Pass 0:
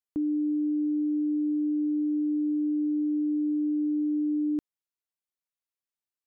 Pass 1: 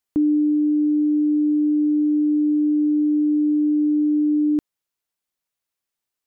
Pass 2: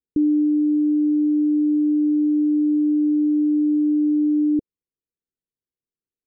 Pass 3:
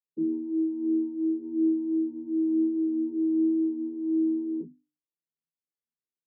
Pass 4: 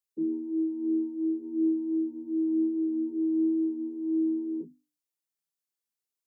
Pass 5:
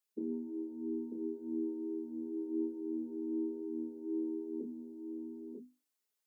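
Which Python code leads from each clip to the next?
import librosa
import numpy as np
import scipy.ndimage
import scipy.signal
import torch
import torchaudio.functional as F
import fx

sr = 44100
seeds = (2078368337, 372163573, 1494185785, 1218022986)

y1 = fx.rider(x, sr, range_db=10, speed_s=0.5)
y1 = F.gain(torch.from_numpy(y1), 8.5).numpy()
y2 = scipy.signal.sosfilt(scipy.signal.butter(12, 500.0, 'lowpass', fs=sr, output='sos'), y1)
y3 = fx.vocoder(y2, sr, bands=32, carrier='saw', carrier_hz=80.4)
y3 = fx.hum_notches(y3, sr, base_hz=50, count=6)
y3 = fx.chorus_voices(y3, sr, voices=4, hz=0.4, base_ms=27, depth_ms=3.6, mix_pct=45)
y3 = F.gain(torch.from_numpy(y3), -5.0).numpy()
y4 = fx.bass_treble(y3, sr, bass_db=-6, treble_db=7)
y5 = fx.brickwall_highpass(y4, sr, low_hz=190.0)
y5 = y5 + 0.78 * np.pad(y5, (int(4.7 * sr / 1000.0), 0))[:len(y5)]
y5 = y5 + 10.0 ** (-4.5 / 20.0) * np.pad(y5, (int(943 * sr / 1000.0), 0))[:len(y5)]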